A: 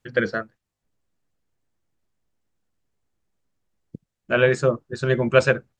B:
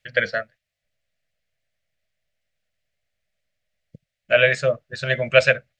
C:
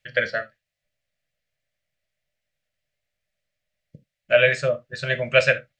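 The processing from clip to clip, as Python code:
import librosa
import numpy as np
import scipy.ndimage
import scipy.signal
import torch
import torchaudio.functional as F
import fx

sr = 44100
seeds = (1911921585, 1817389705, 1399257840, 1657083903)

y1 = fx.curve_eq(x, sr, hz=(140.0, 360.0, 620.0, 920.0, 2000.0, 4600.0, 7100.0), db=(0, -13, 12, -10, 14, 9, 3))
y1 = F.gain(torch.from_numpy(y1), -4.0).numpy()
y2 = fx.rev_gated(y1, sr, seeds[0], gate_ms=100, shape='falling', drr_db=8.5)
y2 = F.gain(torch.from_numpy(y2), -2.0).numpy()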